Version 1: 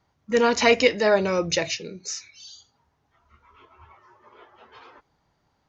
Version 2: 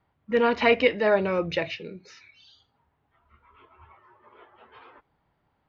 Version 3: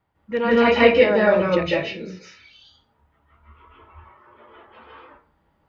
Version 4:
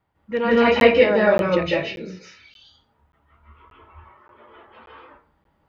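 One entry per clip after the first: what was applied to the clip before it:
LPF 3300 Hz 24 dB/oct; gain -2 dB
reverb RT60 0.35 s, pre-delay 0.139 s, DRR -6 dB; gain -1.5 dB
crackling interface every 0.58 s, samples 512, zero, from 0.8

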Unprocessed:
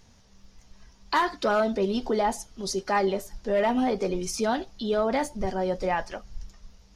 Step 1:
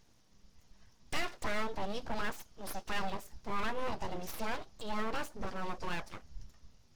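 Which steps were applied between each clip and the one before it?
full-wave rectifier; gain -8 dB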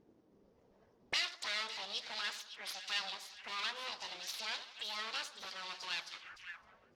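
split-band echo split 1600 Hz, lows 87 ms, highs 0.561 s, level -12 dB; auto-wah 320–4100 Hz, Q 2.2, up, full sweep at -34.5 dBFS; gain +11 dB

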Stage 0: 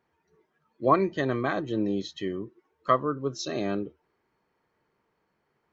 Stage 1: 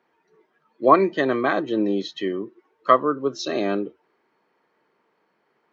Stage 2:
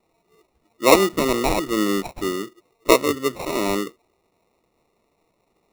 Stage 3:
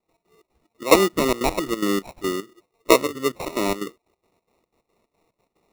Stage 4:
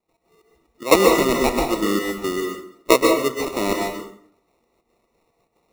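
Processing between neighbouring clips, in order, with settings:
three-band isolator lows -23 dB, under 190 Hz, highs -14 dB, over 5500 Hz; gain +7 dB
sample-rate reducer 1600 Hz, jitter 0%; gain +1 dB
step gate ".x.xx.xx" 181 bpm -12 dB
plate-style reverb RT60 0.59 s, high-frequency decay 0.75×, pre-delay 0.115 s, DRR 1 dB

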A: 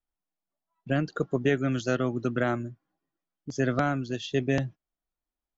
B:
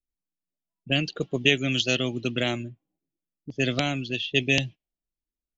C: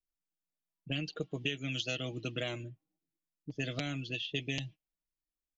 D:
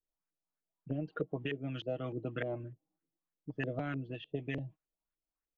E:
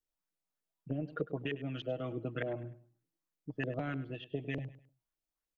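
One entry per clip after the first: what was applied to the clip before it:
low-pass opened by the level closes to 370 Hz, open at -21.5 dBFS; resonant high shelf 2000 Hz +12 dB, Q 3
comb 6.4 ms, depth 61%; compressor 4:1, threshold -25 dBFS, peak gain reduction 11 dB; gain -7.5 dB
LFO low-pass saw up 3.3 Hz 410–1800 Hz; gain -1 dB
feedback echo 0.102 s, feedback 30%, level -15.5 dB

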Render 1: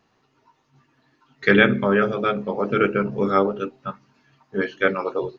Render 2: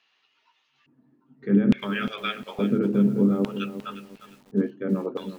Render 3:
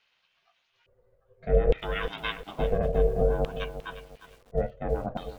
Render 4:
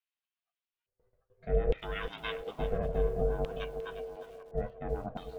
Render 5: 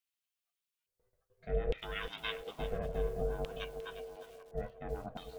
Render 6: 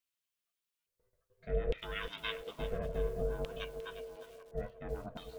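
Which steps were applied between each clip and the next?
limiter -13 dBFS, peak gain reduction 11 dB; LFO band-pass square 0.58 Hz 220–3000 Hz; lo-fi delay 0.354 s, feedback 35%, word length 9-bit, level -11.5 dB; gain +8.5 dB
ring modulator 250 Hz
gate with hold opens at -54 dBFS; notch 540 Hz, Q 12; on a send: band-limited delay 0.781 s, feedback 33%, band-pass 620 Hz, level -10 dB; on the sum: gain -6 dB
high shelf 2300 Hz +10.5 dB; gain -5.5 dB
Butterworth band-stop 770 Hz, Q 7

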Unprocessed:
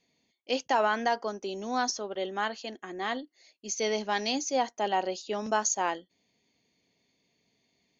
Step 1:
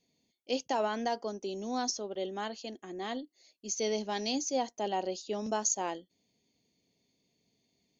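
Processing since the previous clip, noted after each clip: bell 1500 Hz -11 dB 1.9 oct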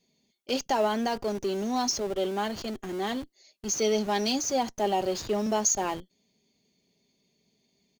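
comb 5 ms, depth 42%; in parallel at -10 dB: Schmitt trigger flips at -44.5 dBFS; on the sum: gain +3.5 dB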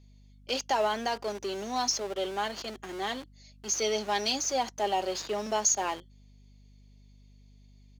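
weighting filter A; hum 50 Hz, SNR 23 dB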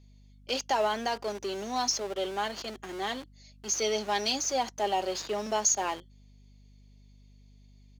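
nothing audible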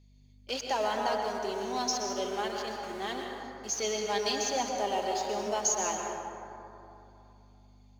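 plate-style reverb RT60 2.9 s, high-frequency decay 0.35×, pre-delay 0.105 s, DRR 1 dB; gain -3.5 dB

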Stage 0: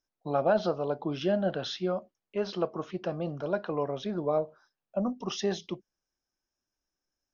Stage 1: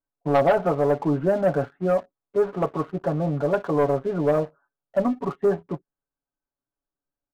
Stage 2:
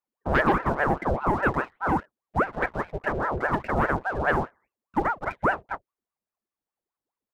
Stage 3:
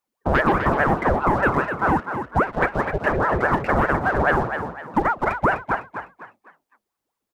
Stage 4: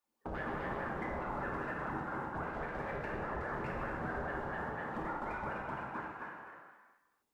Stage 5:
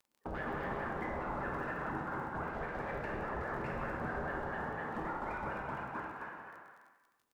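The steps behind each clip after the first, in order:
steep low-pass 1500 Hz 36 dB/oct; comb 7.1 ms, depth 79%; sample leveller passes 2
ring modulator with a swept carrier 700 Hz, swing 70%, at 4.9 Hz
compressor 2.5:1, threshold -25 dBFS, peak gain reduction 6.5 dB; frequency-shifting echo 0.252 s, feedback 35%, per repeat +52 Hz, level -8 dB; gain +8 dB
limiter -19 dBFS, peak gain reduction 11.5 dB; compressor 6:1, threshold -34 dBFS, peak gain reduction 10.5 dB; non-linear reverb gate 0.49 s falling, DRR -3.5 dB; gain -7 dB
crackle 22/s -51 dBFS; echo 0.184 s -11.5 dB

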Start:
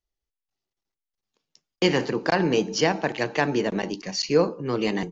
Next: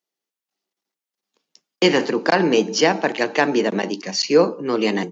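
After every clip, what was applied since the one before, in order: HPF 190 Hz 24 dB/oct; gain +5.5 dB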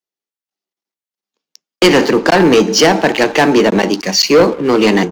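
sample leveller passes 3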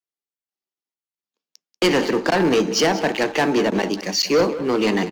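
echo 0.189 s -14.5 dB; gain -8.5 dB

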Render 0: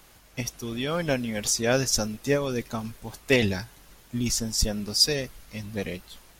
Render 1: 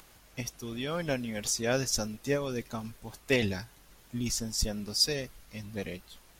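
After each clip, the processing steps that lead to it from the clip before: upward compressor, threshold -46 dBFS; gain -5.5 dB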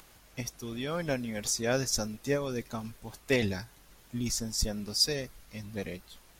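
dynamic EQ 2900 Hz, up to -6 dB, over -57 dBFS, Q 5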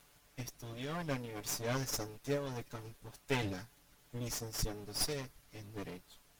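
minimum comb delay 6.9 ms; gain -6 dB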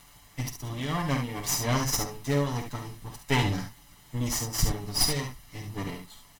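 comb 1 ms, depth 51%; on a send: early reflections 49 ms -9 dB, 70 ms -7.5 dB; on the sum: gain +8.5 dB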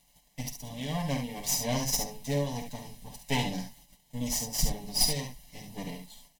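fixed phaser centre 350 Hz, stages 6; gate -54 dBFS, range -10 dB

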